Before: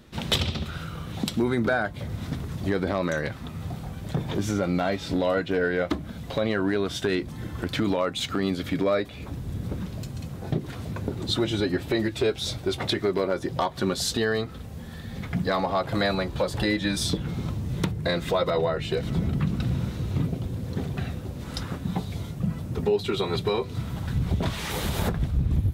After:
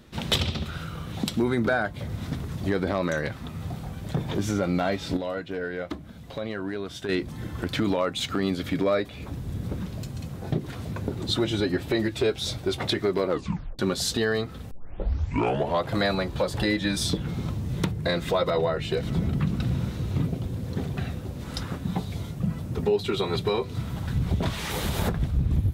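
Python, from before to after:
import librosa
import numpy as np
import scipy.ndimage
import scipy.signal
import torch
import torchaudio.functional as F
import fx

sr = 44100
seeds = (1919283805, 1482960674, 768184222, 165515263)

y = fx.edit(x, sr, fx.clip_gain(start_s=5.17, length_s=1.92, db=-7.0),
    fx.tape_stop(start_s=13.28, length_s=0.51),
    fx.tape_start(start_s=14.71, length_s=1.17), tone=tone)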